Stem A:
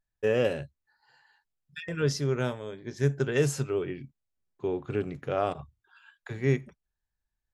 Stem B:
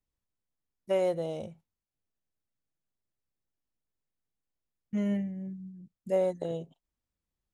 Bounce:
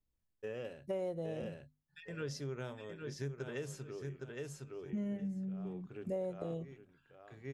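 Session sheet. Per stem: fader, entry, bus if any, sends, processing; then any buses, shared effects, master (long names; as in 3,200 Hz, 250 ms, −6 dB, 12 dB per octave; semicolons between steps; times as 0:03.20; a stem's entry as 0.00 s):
−9.5 dB, 0.20 s, no send, echo send −8 dB, automatic ducking −19 dB, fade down 1.60 s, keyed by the second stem
−5.5 dB, 0.00 s, no send, no echo send, low-shelf EQ 450 Hz +10 dB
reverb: not used
echo: repeating echo 813 ms, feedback 21%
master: mains-hum notches 50/100/150/200/250 Hz; downward compressor 3 to 1, threshold −38 dBFS, peak gain reduction 10.5 dB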